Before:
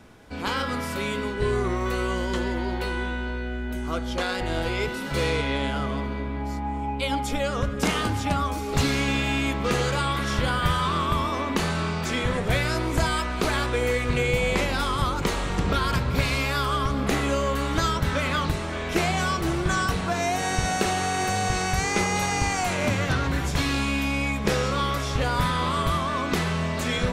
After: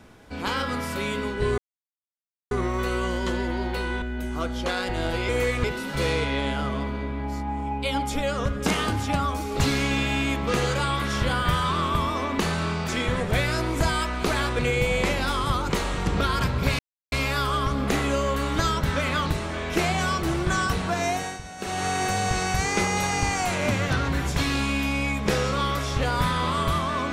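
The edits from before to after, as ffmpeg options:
-filter_complex "[0:a]asplit=9[a][b][c][d][e][f][g][h][i];[a]atrim=end=1.58,asetpts=PTS-STARTPTS,afade=t=out:st=1.576:d=0.004:c=hsin,apad=pad_dur=0.93[j];[b]atrim=start=1.58:end=3.092,asetpts=PTS-STARTPTS,afade=t=in:d=0.004:c=hsin[k];[c]atrim=start=3.538:end=4.812[l];[d]atrim=start=13.758:end=14.112[m];[e]atrim=start=4.808:end=13.762[n];[f]atrim=start=14.108:end=16.31,asetpts=PTS-STARTPTS,afade=t=out:st=2.198:d=0.004:c=hsin,apad=pad_dur=0.33[o];[g]atrim=start=16.31:end=20.59,asetpts=PTS-STARTPTS,afade=t=in:d=0.004:c=hsin,afade=t=out:st=3.98:d=0.3:silence=0.188365[p];[h]atrim=start=20.59:end=20.76,asetpts=PTS-STARTPTS,volume=-14.5dB[q];[i]atrim=start=20.76,asetpts=PTS-STARTPTS,afade=t=in:d=0.3:silence=0.188365[r];[j][k]concat=n=2:v=0:a=1[s];[s][l]acrossfade=d=0.004:c1=hsin:c2=hsin[t];[t][m]acrossfade=d=0.004:c1=hsin:c2=hsin[u];[u][n]acrossfade=d=0.004:c1=hsin:c2=hsin[v];[o][p][q][r]concat=n=4:v=0:a=1[w];[v][w]acrossfade=d=0.004:c1=hsin:c2=hsin"

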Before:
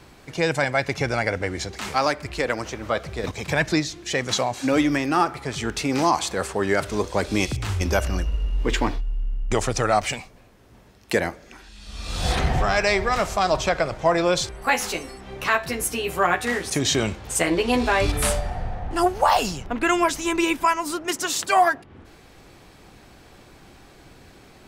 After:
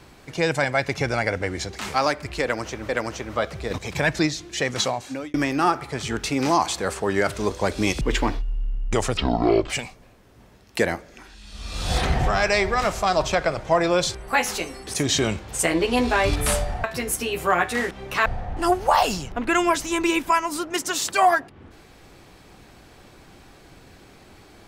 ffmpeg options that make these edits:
-filter_complex "[0:a]asplit=10[a][b][c][d][e][f][g][h][i][j];[a]atrim=end=2.892[k];[b]atrim=start=2.418:end=4.87,asetpts=PTS-STARTPTS,afade=t=out:st=1.932:d=0.52[l];[c]atrim=start=4.87:end=7.542,asetpts=PTS-STARTPTS,afade=t=in:d=0.004:c=hsin[m];[d]atrim=start=8.598:end=9.764[n];[e]atrim=start=9.76:end=10.04,asetpts=PTS-STARTPTS,asetrate=23373,aresample=44100,atrim=end_sample=23298,asetpts=PTS-STARTPTS[o];[f]atrim=start=10.036:end=15.212[p];[g]atrim=start=16.628:end=18.602[q];[h]atrim=start=15.558:end=16.632[r];[i]atrim=start=15.208:end=15.562[s];[j]atrim=start=18.598[t];[l][m]concat=n=2:v=0:a=1[u];[k][u]acrossfade=d=0.004:c1=hsin:c2=hsin[v];[v][n]acrossfade=d=0.004:c1=hsin:c2=hsin[w];[w][o]acrossfade=d=0.004:c1=hsin:c2=hsin[x];[x][p]acrossfade=d=0.004:c1=hsin:c2=hsin[y];[y][q]acrossfade=d=0.004:c1=hsin:c2=hsin[z];[z][r]acrossfade=d=0.004:c1=hsin:c2=hsin[aa];[aa][s]acrossfade=d=0.004:c1=hsin:c2=hsin[ab];[ab][t]acrossfade=d=0.004:c1=hsin:c2=hsin"

